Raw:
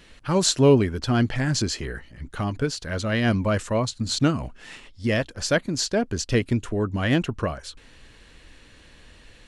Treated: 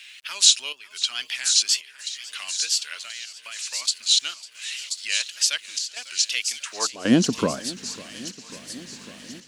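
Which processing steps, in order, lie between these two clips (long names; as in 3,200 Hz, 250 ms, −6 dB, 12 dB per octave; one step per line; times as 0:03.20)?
in parallel at −2 dB: brickwall limiter −17 dBFS, peak gain reduction 10 dB
on the sum: tape wow and flutter 110 cents
mains hum 50 Hz, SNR 22 dB
high-pass filter sweep 2,500 Hz → 220 Hz, 0:06.61–0:07.13
0:02.98–0:03.82: output level in coarse steps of 19 dB
high-shelf EQ 2,700 Hz +7.5 dB
on a send: delay with a high-pass on its return 1,032 ms, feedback 35%, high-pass 5,200 Hz, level −4 dB
on the sum: dynamic equaliser 2,000 Hz, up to −7 dB, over −34 dBFS, Q 1.5
bit reduction 10 bits
gate pattern "xxxx.xxxxx.xxx" 83 BPM −12 dB
feedback echo with a swinging delay time 547 ms, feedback 77%, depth 80 cents, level −19.5 dB
level −3 dB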